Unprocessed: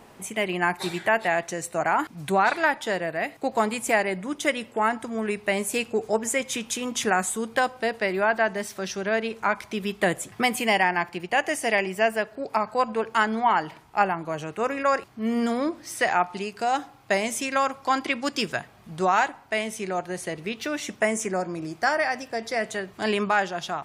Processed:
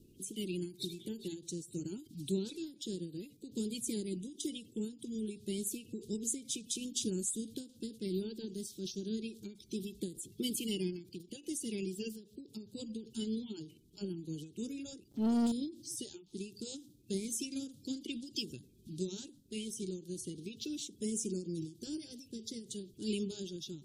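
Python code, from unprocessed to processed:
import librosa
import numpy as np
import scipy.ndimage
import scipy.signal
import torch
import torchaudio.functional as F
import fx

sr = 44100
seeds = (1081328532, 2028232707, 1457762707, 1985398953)

y = fx.spec_quant(x, sr, step_db=30)
y = scipy.signal.sosfilt(scipy.signal.ellip(3, 1.0, 40, [360.0, 3500.0], 'bandstop', fs=sr, output='sos'), y)
y = fx.leveller(y, sr, passes=2, at=(15.11, 15.52))
y = fx.end_taper(y, sr, db_per_s=160.0)
y = y * librosa.db_to_amplitude(-4.5)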